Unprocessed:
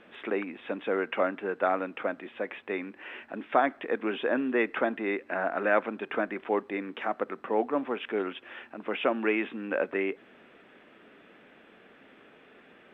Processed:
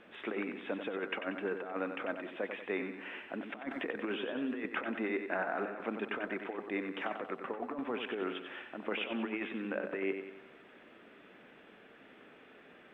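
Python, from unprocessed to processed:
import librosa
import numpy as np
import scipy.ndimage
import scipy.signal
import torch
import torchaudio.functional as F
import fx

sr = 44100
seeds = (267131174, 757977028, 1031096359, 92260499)

p1 = fx.over_compress(x, sr, threshold_db=-30.0, ratio=-0.5)
p2 = p1 + fx.echo_feedback(p1, sr, ms=93, feedback_pct=48, wet_db=-8, dry=0)
p3 = fx.band_squash(p2, sr, depth_pct=70, at=(3.71, 4.65))
y = p3 * 10.0 ** (-5.5 / 20.0)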